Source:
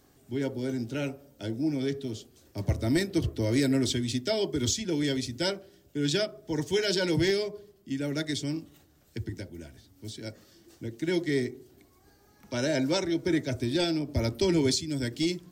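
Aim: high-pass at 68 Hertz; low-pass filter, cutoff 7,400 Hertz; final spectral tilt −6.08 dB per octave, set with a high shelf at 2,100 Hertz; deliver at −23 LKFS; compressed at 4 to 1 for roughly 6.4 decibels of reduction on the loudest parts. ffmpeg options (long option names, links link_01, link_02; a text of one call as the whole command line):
ffmpeg -i in.wav -af "highpass=68,lowpass=7400,highshelf=frequency=2100:gain=-7.5,acompressor=threshold=-29dB:ratio=4,volume=11.5dB" out.wav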